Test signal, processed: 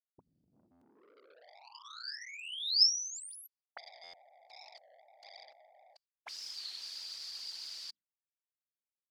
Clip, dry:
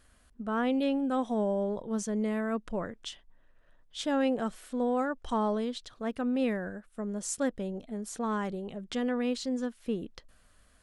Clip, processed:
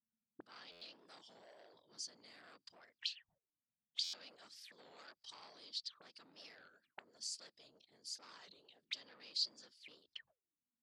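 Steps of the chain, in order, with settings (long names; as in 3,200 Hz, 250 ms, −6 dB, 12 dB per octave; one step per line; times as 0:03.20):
mains-hum notches 50/100/150/200 Hz
noise reduction from a noise print of the clip's start 7 dB
noise gate −56 dBFS, range −24 dB
in parallel at +2 dB: brickwall limiter −28.5 dBFS
on the sum: random phases in short frames
soft clipping −22 dBFS
envelope filter 220–4,700 Hz, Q 12, up, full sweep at −32.5 dBFS
buffer that repeats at 0:00.71/0:04.03, samples 512, times 8
wow of a warped record 33 1/3 rpm, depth 160 cents
level +5.5 dB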